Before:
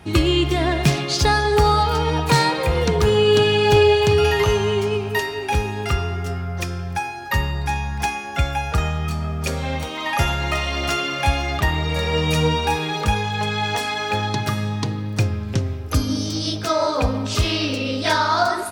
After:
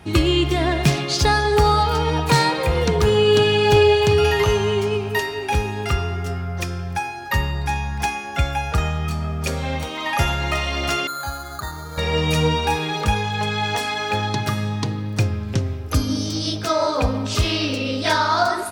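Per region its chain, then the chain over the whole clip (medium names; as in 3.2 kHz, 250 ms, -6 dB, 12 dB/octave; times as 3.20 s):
11.07–11.98 s: four-pole ladder low-pass 1.5 kHz, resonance 75% + careless resampling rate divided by 8×, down filtered, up hold
whole clip: none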